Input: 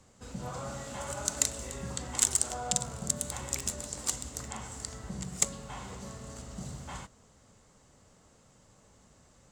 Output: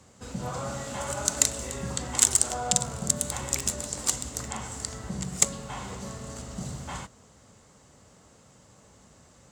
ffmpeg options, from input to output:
-af "highpass=55,volume=1.88"

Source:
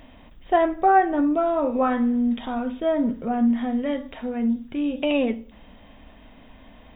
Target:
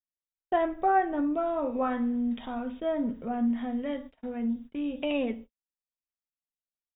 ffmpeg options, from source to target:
-af "agate=range=0.00126:threshold=0.0178:ratio=16:detection=peak,volume=0.447"

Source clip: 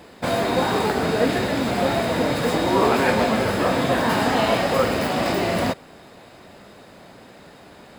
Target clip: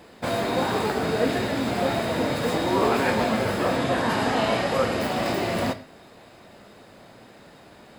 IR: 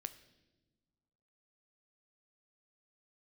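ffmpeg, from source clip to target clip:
-filter_complex "[0:a]asettb=1/sr,asplit=3[s0][s1][s2];[s0]atrim=end=3.774[s3];[s1]atrim=start=3.77:end=5,asetpts=PTS-STARTPTS,afade=t=in:d=0.004:c=qsin,afade=t=out:st=1.226:d=0.004:c=qsin,lowpass=11000[s4];[s2]atrim=start=4.996[s5];[s3][s4]acrossfade=d=0.004:c1=hsin:c2=qsin[s6];[s6][s5]acrossfade=d=0.004:c1=qsin:c2=hsin[s7];[1:a]atrim=start_sample=2205,atrim=end_sample=6174[s8];[s7][s8]afir=irnorm=-1:irlink=0"

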